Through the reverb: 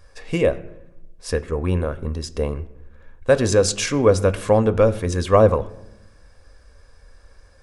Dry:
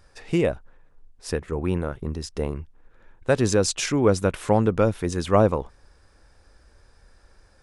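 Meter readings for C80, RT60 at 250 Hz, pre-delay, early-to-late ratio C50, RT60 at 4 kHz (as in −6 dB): 19.0 dB, 1.2 s, 4 ms, 17.5 dB, 0.50 s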